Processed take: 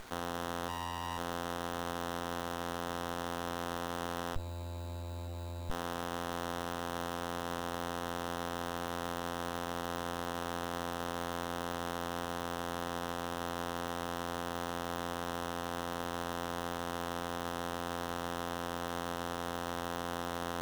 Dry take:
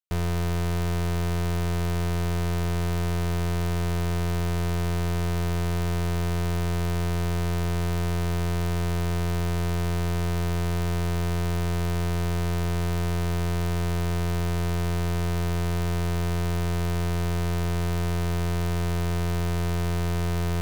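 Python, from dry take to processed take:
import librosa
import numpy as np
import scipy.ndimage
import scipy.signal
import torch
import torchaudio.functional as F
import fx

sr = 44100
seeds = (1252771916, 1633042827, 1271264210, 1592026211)

p1 = fx.freq_invert(x, sr, carrier_hz=3900, at=(4.36, 5.7))
p2 = fx.quant_dither(p1, sr, seeds[0], bits=6, dither='triangular')
p3 = p1 + F.gain(torch.from_numpy(p2), -4.0).numpy()
p4 = scipy.signal.sosfilt(scipy.signal.butter(2, 1200.0, 'highpass', fs=sr, output='sos'), p3)
p5 = fx.room_flutter(p4, sr, wall_m=3.8, rt60_s=0.36, at=(0.68, 1.17), fade=0.02)
p6 = fx.spec_gate(p5, sr, threshold_db=-20, keep='strong')
p7 = fx.running_max(p6, sr, window=17)
y = F.gain(torch.from_numpy(p7), -6.5).numpy()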